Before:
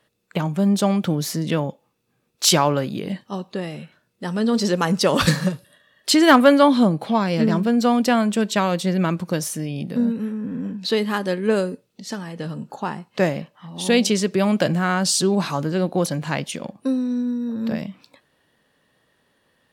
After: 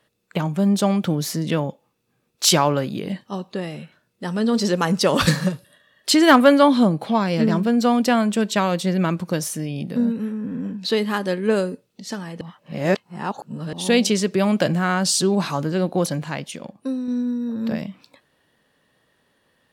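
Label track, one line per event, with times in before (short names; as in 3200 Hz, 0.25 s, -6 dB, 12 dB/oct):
12.410000	13.730000	reverse
16.240000	17.080000	gain -4 dB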